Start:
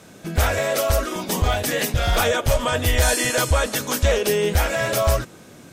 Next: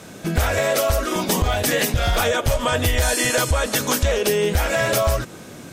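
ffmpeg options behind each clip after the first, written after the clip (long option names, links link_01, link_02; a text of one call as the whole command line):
ffmpeg -i in.wav -af "acompressor=threshold=-22dB:ratio=6,volume=6dB" out.wav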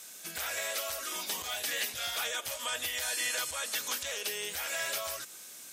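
ffmpeg -i in.wav -filter_complex "[0:a]aderivative,acrossover=split=4000[link_01][link_02];[link_02]acompressor=threshold=-36dB:ratio=4:attack=1:release=60[link_03];[link_01][link_03]amix=inputs=2:normalize=0" out.wav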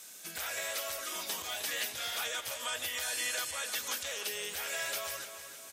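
ffmpeg -i in.wav -filter_complex "[0:a]highpass=59,asplit=2[link_01][link_02];[link_02]adelay=309,lowpass=frequency=4900:poles=1,volume=-9.5dB,asplit=2[link_03][link_04];[link_04]adelay=309,lowpass=frequency=4900:poles=1,volume=0.49,asplit=2[link_05][link_06];[link_06]adelay=309,lowpass=frequency=4900:poles=1,volume=0.49,asplit=2[link_07][link_08];[link_08]adelay=309,lowpass=frequency=4900:poles=1,volume=0.49,asplit=2[link_09][link_10];[link_10]adelay=309,lowpass=frequency=4900:poles=1,volume=0.49[link_11];[link_01][link_03][link_05][link_07][link_09][link_11]amix=inputs=6:normalize=0,volume=-2dB" out.wav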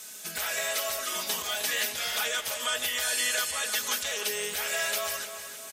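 ffmpeg -i in.wav -af "aecho=1:1:4.7:0.49,volume=5.5dB" out.wav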